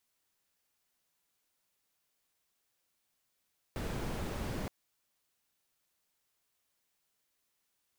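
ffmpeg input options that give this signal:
-f lavfi -i "anoisesrc=c=brown:a=0.0661:d=0.92:r=44100:seed=1"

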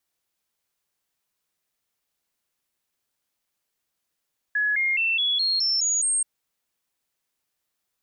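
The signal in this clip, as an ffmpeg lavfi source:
-f lavfi -i "aevalsrc='0.1*clip(min(mod(t,0.21),0.21-mod(t,0.21))/0.005,0,1)*sin(2*PI*1690*pow(2,floor(t/0.21)/3)*mod(t,0.21))':d=1.68:s=44100"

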